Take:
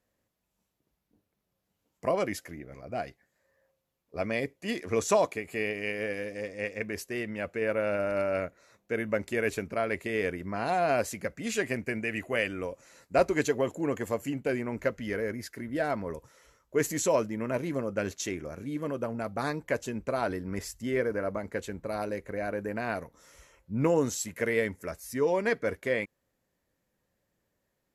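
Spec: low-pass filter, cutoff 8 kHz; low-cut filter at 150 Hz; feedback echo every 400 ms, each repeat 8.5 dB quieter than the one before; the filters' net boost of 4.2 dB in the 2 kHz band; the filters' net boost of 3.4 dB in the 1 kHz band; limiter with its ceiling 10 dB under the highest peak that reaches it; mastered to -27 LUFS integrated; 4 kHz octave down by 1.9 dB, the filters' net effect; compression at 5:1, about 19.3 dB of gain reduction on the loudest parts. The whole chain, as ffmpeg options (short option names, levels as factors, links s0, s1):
-af "highpass=150,lowpass=8000,equalizer=f=1000:t=o:g=4,equalizer=f=2000:t=o:g=5,equalizer=f=4000:t=o:g=-5,acompressor=threshold=0.0112:ratio=5,alimiter=level_in=2.51:limit=0.0631:level=0:latency=1,volume=0.398,aecho=1:1:400|800|1200|1600:0.376|0.143|0.0543|0.0206,volume=7.08"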